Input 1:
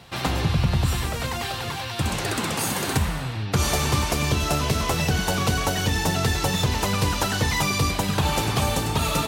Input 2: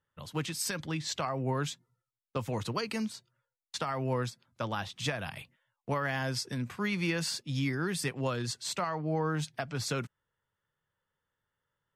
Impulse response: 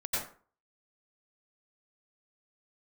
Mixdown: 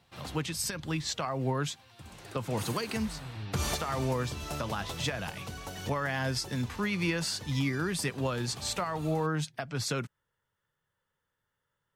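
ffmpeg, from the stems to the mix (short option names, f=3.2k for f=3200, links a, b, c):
-filter_complex "[0:a]volume=-6dB,afade=t=in:st=2.34:d=0.27:silence=0.237137,afade=t=out:st=4.84:d=0.76:silence=0.446684[a];[1:a]volume=2dB,asplit=2[b][c];[c]apad=whole_len=408965[d];[a][d]sidechaincompress=threshold=-35dB:ratio=8:attack=7.9:release=1120[e];[e][b]amix=inputs=2:normalize=0,alimiter=limit=-21dB:level=0:latency=1:release=204"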